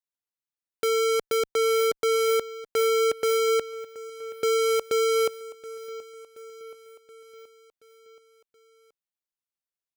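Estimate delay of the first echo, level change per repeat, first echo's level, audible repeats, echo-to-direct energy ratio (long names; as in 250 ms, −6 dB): 726 ms, −4.5 dB, −18.5 dB, 4, −16.5 dB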